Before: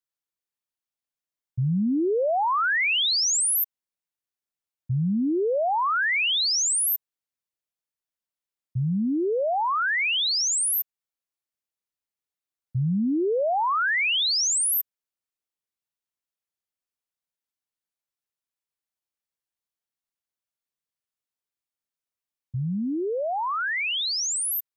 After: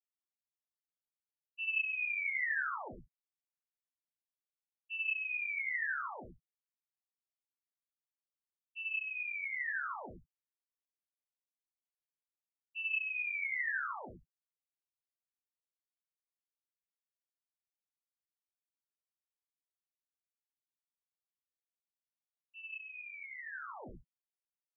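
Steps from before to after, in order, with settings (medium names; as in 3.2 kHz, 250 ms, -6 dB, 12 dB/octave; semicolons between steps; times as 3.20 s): expander -13 dBFS; low-pass that closes with the level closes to 1.3 kHz; dynamic bell 1.2 kHz, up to +5 dB, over -55 dBFS, Q 2.2; gated-style reverb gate 120 ms flat, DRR 0.5 dB; frequency inversion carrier 2.8 kHz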